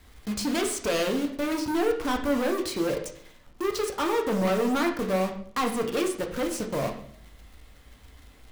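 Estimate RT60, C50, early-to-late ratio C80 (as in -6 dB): 0.60 s, 8.5 dB, 12.0 dB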